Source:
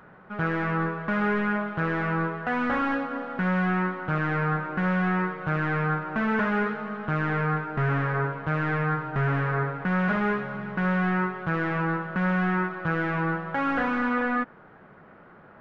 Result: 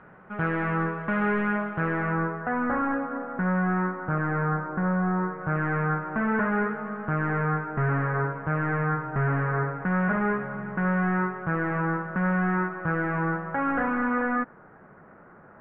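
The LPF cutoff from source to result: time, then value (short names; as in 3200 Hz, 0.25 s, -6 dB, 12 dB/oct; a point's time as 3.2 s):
LPF 24 dB/oct
1.61 s 2800 Hz
2.57 s 1700 Hz
4.41 s 1700 Hz
5.18 s 1300 Hz
5.59 s 2000 Hz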